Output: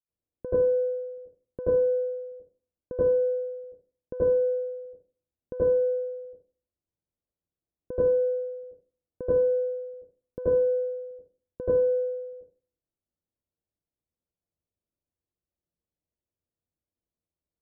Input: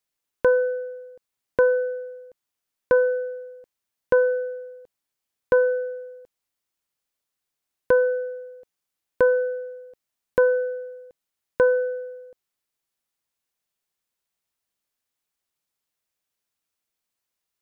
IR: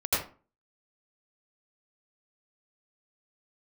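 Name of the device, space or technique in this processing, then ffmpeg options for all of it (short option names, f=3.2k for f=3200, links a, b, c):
television next door: -filter_complex "[0:a]acompressor=threshold=-22dB:ratio=3,lowpass=370[a];[1:a]atrim=start_sample=2205[b];[a][b]afir=irnorm=-1:irlink=0,volume=-6.5dB"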